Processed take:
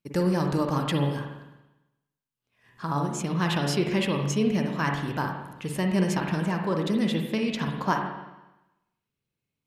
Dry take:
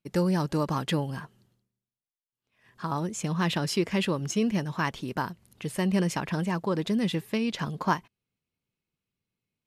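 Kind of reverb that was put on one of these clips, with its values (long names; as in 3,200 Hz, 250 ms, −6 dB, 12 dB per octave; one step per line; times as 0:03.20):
spring reverb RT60 1 s, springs 42/49/56 ms, chirp 40 ms, DRR 2.5 dB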